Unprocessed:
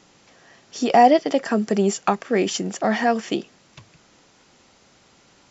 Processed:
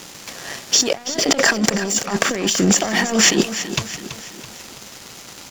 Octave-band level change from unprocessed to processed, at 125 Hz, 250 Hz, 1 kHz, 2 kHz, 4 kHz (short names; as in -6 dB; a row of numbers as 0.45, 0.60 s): +5.5, +2.0, -7.0, +9.0, +13.5 dB